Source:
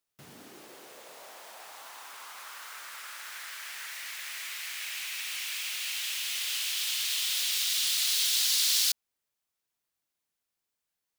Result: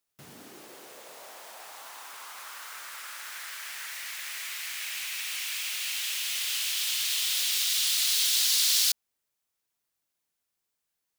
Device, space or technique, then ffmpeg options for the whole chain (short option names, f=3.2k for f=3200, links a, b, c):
exciter from parts: -filter_complex "[0:a]asplit=2[a][b];[b]highpass=4.5k,asoftclip=type=tanh:threshold=-28.5dB,volume=-13.5dB[c];[a][c]amix=inputs=2:normalize=0,volume=1.5dB"